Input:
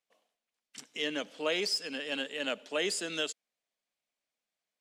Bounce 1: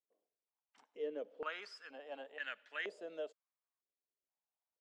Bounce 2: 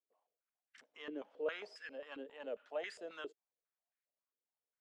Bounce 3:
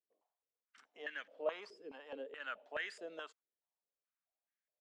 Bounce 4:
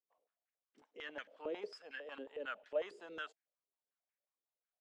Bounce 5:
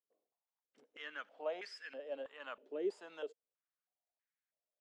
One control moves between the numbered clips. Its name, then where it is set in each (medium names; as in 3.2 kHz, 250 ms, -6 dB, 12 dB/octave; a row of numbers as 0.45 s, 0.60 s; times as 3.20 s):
step-sequenced band-pass, rate: 2.1 Hz, 7.4 Hz, 4.7 Hz, 11 Hz, 3.1 Hz